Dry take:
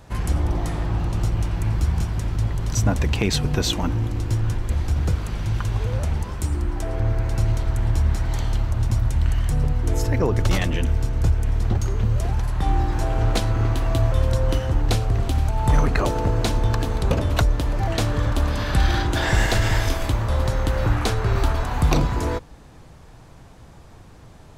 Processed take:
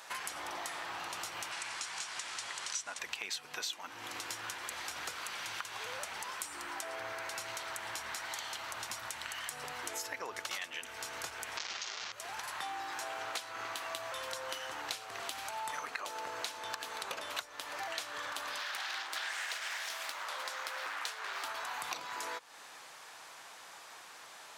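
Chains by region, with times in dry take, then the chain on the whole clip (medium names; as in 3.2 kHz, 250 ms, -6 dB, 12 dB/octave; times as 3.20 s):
1.52–2.99 s: CVSD coder 64 kbps + low-pass 8.6 kHz 24 dB/octave + tilt EQ +2 dB/octave
11.57–12.12 s: one-bit delta coder 32 kbps, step -20 dBFS + treble shelf 3.9 kHz +9 dB
18.58–21.44 s: high-pass 560 Hz 6 dB/octave + loudspeaker Doppler distortion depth 0.68 ms
whole clip: high-pass 1.2 kHz 12 dB/octave; compression 6:1, threshold -44 dBFS; trim +6 dB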